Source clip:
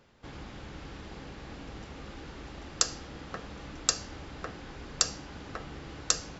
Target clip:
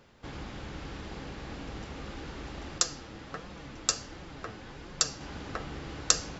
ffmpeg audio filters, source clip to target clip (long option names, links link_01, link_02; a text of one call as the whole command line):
ffmpeg -i in.wav -filter_complex "[0:a]asettb=1/sr,asplit=3[link_01][link_02][link_03];[link_01]atrim=end=2.784[link_04];[link_02]atrim=start=2.78:end=5.21,asetpts=PTS-STARTPTS,afade=type=in:duration=0.004:curve=qsin,afade=type=out:start_time=2.426:duration=0.004:curve=qsin,flanger=delay=5.5:depth=3.9:regen=45:speed=1.4:shape=sinusoidal[link_05];[link_03]atrim=start=5.206[link_06];[link_04][link_05]acrossfade=duration=0.004:curve1=hsin:curve2=qsin[link_07];[link_07][link_06]acrossfade=duration=0.004:curve1=qsin:curve2=hsin,volume=3dB" out.wav